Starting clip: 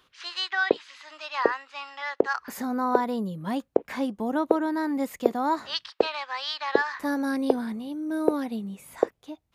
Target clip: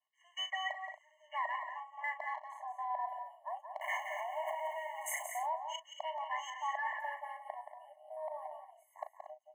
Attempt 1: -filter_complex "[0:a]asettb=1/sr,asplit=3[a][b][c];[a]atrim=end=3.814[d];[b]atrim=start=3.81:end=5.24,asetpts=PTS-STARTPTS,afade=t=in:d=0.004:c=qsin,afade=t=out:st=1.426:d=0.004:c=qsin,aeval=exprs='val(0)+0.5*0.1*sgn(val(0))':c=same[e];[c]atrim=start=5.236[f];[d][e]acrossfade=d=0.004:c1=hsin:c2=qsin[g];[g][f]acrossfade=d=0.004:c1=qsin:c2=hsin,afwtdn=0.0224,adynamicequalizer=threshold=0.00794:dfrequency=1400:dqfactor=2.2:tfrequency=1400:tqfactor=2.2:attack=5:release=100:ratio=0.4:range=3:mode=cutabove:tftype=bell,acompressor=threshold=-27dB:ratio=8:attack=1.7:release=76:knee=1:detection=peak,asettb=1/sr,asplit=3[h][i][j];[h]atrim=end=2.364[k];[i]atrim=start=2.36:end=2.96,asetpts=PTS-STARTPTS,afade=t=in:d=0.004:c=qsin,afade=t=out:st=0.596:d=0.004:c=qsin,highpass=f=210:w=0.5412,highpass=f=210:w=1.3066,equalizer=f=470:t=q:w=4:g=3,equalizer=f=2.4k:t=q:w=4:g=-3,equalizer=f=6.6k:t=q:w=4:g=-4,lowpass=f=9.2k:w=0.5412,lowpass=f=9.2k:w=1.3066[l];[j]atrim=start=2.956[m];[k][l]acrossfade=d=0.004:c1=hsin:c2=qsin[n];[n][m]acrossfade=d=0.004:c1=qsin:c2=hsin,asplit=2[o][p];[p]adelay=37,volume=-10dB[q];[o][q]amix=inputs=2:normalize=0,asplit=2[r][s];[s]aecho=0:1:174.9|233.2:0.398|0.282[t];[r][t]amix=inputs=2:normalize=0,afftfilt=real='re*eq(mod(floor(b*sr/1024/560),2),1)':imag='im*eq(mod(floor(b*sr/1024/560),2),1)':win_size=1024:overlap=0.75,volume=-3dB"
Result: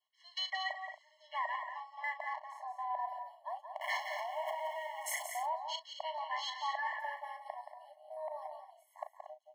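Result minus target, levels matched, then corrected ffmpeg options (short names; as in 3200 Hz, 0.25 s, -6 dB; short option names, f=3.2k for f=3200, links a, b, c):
4000 Hz band +2.5 dB
-filter_complex "[0:a]asettb=1/sr,asplit=3[a][b][c];[a]atrim=end=3.814[d];[b]atrim=start=3.81:end=5.24,asetpts=PTS-STARTPTS,afade=t=in:d=0.004:c=qsin,afade=t=out:st=1.426:d=0.004:c=qsin,aeval=exprs='val(0)+0.5*0.1*sgn(val(0))':c=same[e];[c]atrim=start=5.236[f];[d][e]acrossfade=d=0.004:c1=hsin:c2=qsin[g];[g][f]acrossfade=d=0.004:c1=qsin:c2=hsin,afwtdn=0.0224,adynamicequalizer=threshold=0.00794:dfrequency=1400:dqfactor=2.2:tfrequency=1400:tqfactor=2.2:attack=5:release=100:ratio=0.4:range=3:mode=cutabove:tftype=bell,asuperstop=centerf=4300:order=20:qfactor=1.4,acompressor=threshold=-27dB:ratio=8:attack=1.7:release=76:knee=1:detection=peak,asettb=1/sr,asplit=3[h][i][j];[h]atrim=end=2.364[k];[i]atrim=start=2.36:end=2.96,asetpts=PTS-STARTPTS,afade=t=in:d=0.004:c=qsin,afade=t=out:st=0.596:d=0.004:c=qsin,highpass=f=210:w=0.5412,highpass=f=210:w=1.3066,equalizer=f=470:t=q:w=4:g=3,equalizer=f=2.4k:t=q:w=4:g=-3,equalizer=f=6.6k:t=q:w=4:g=-4,lowpass=f=9.2k:w=0.5412,lowpass=f=9.2k:w=1.3066[l];[j]atrim=start=2.956[m];[k][l]acrossfade=d=0.004:c1=hsin:c2=qsin[n];[n][m]acrossfade=d=0.004:c1=qsin:c2=hsin,asplit=2[o][p];[p]adelay=37,volume=-10dB[q];[o][q]amix=inputs=2:normalize=0,asplit=2[r][s];[s]aecho=0:1:174.9|233.2:0.398|0.282[t];[r][t]amix=inputs=2:normalize=0,afftfilt=real='re*eq(mod(floor(b*sr/1024/560),2),1)':imag='im*eq(mod(floor(b*sr/1024/560),2),1)':win_size=1024:overlap=0.75,volume=-3dB"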